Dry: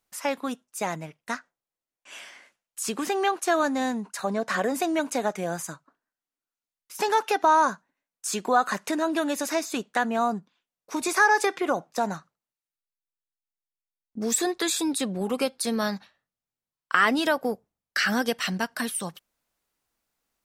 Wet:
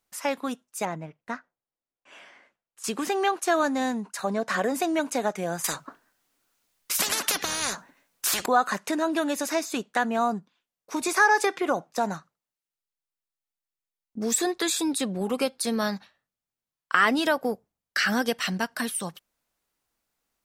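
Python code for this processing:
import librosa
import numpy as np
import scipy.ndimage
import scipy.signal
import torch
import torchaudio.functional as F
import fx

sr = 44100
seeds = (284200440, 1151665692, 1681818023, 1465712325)

y = fx.lowpass(x, sr, hz=1300.0, slope=6, at=(0.85, 2.84))
y = fx.spectral_comp(y, sr, ratio=10.0, at=(5.64, 8.46))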